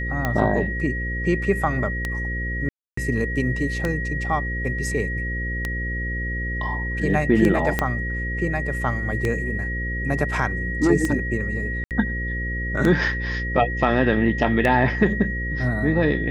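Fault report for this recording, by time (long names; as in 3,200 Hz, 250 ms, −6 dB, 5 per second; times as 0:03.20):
mains buzz 60 Hz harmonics 9 −28 dBFS
scratch tick 33 1/3 rpm −10 dBFS
whistle 1,900 Hz −28 dBFS
0:02.69–0:02.97: drop-out 284 ms
0:07.79: click −7 dBFS
0:11.84–0:11.91: drop-out 68 ms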